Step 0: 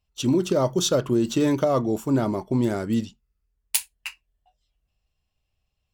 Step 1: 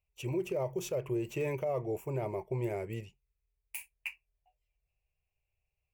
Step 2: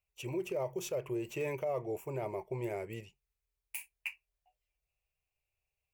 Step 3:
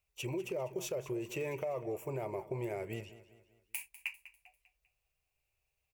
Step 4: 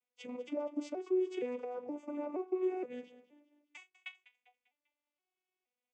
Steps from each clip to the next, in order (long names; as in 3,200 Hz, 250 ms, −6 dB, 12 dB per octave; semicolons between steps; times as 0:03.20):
drawn EQ curve 150 Hz 0 dB, 260 Hz −22 dB, 370 Hz +2 dB, 530 Hz +2 dB, 960 Hz −1 dB, 1,400 Hz −12 dB, 2,400 Hz +10 dB, 3,600 Hz −17 dB, 16,000 Hz +3 dB; brickwall limiter −16.5 dBFS, peak gain reduction 10.5 dB; level −8.5 dB
low-shelf EQ 290 Hz −7 dB
downward compressor 3 to 1, threshold −40 dBFS, peak gain reduction 7 dB; repeating echo 198 ms, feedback 44%, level −16 dB; level +4 dB
vocoder with an arpeggio as carrier minor triad, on B3, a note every 471 ms; level +2 dB